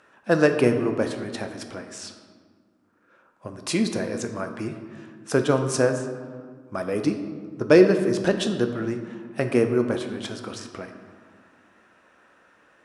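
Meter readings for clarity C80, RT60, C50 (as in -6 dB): 9.5 dB, 1.8 s, 8.0 dB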